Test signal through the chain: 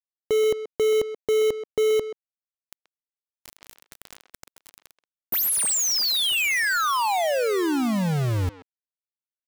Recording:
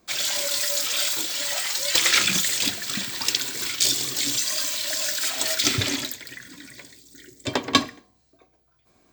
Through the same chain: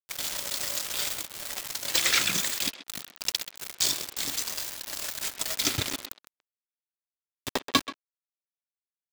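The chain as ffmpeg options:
-filter_complex "[0:a]aeval=exprs='val(0)*gte(abs(val(0)),0.0944)':c=same,acontrast=27,asplit=2[s0][s1];[s1]adelay=130,highpass=300,lowpass=3400,asoftclip=type=hard:threshold=0.335,volume=0.282[s2];[s0][s2]amix=inputs=2:normalize=0,volume=0.376"

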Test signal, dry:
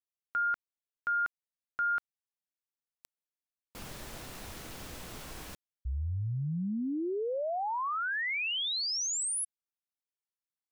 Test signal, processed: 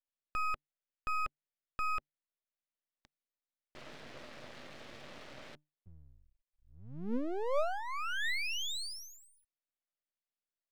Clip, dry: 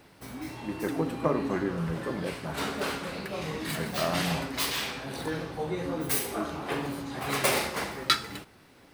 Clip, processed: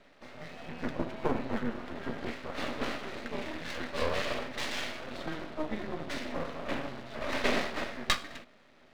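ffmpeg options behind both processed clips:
-af "afreqshift=-150,highpass=230,equalizer=f=240:t=q:w=4:g=8,equalizer=f=590:t=q:w=4:g=9,equalizer=f=920:t=q:w=4:g=-5,equalizer=f=1900:t=q:w=4:g=4,lowpass=f=4300:w=0.5412,lowpass=f=4300:w=1.3066,aeval=exprs='max(val(0),0)':c=same"

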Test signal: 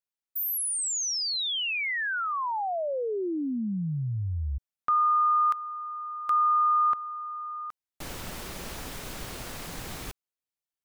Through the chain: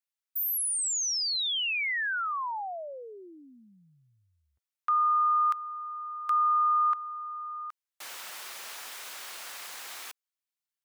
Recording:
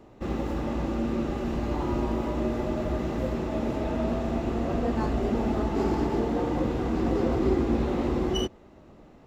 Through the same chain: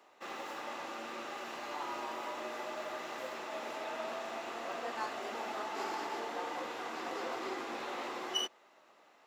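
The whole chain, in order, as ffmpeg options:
-af "highpass=1000"

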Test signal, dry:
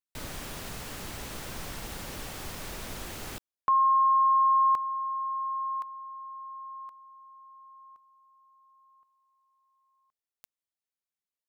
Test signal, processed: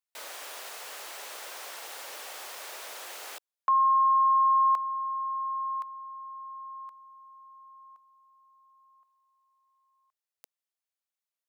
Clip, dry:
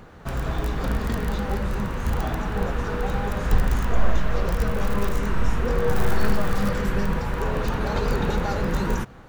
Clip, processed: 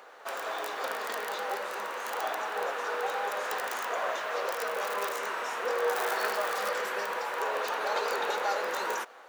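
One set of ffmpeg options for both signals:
-af "highpass=f=500:w=0.5412,highpass=f=500:w=1.3066"

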